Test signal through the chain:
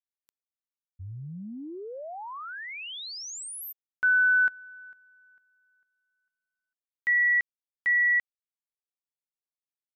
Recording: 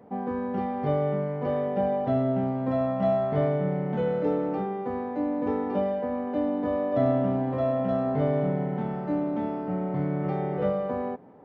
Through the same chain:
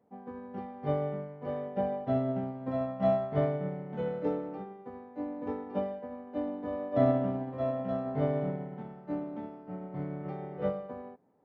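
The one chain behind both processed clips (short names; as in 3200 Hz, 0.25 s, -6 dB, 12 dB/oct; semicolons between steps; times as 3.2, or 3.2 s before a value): upward expander 2.5:1, over -33 dBFS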